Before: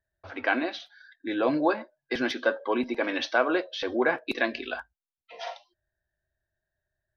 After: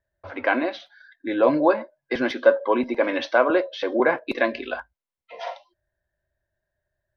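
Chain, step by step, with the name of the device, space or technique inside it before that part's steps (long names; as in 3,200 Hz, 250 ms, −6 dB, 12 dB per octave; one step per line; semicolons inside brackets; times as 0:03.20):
0:03.50–0:04.00: high-pass filter 170 Hz 24 dB per octave
inside a helmet (high-shelf EQ 3,300 Hz −9 dB; hollow resonant body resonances 560/1,000/2,100 Hz, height 8 dB)
level +4 dB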